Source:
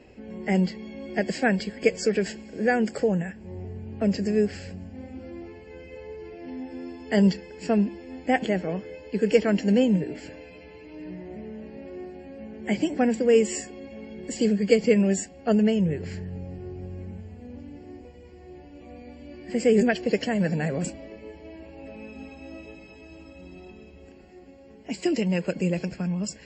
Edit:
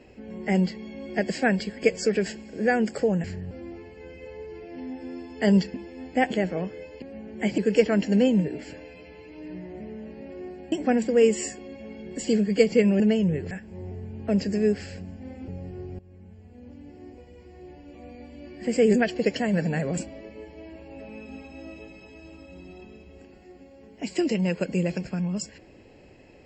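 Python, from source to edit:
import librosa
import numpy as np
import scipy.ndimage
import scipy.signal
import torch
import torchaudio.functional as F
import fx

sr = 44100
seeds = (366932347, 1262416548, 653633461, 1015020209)

y = fx.edit(x, sr, fx.swap(start_s=3.24, length_s=1.97, other_s=16.08, other_length_s=0.27),
    fx.cut(start_s=7.44, length_s=0.42),
    fx.move(start_s=12.28, length_s=0.56, to_s=9.14),
    fx.cut(start_s=15.12, length_s=0.45),
    fx.fade_in_from(start_s=16.86, length_s=1.85, curve='qsin', floor_db=-17.0), tone=tone)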